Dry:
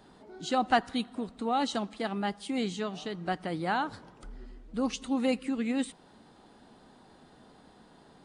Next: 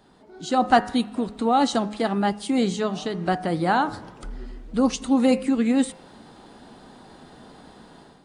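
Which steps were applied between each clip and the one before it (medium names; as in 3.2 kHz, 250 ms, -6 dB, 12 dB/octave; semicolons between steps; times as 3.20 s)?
de-hum 104.8 Hz, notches 27; dynamic bell 2.6 kHz, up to -6 dB, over -48 dBFS, Q 0.95; level rider gain up to 10 dB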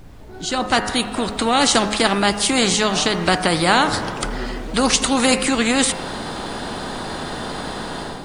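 fade-in on the opening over 1.78 s; added noise brown -59 dBFS; spectrum-flattening compressor 2:1; trim +7 dB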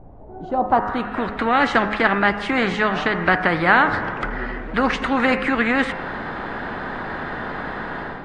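low-pass sweep 740 Hz -> 1.8 kHz, 0.60–1.17 s; trim -2.5 dB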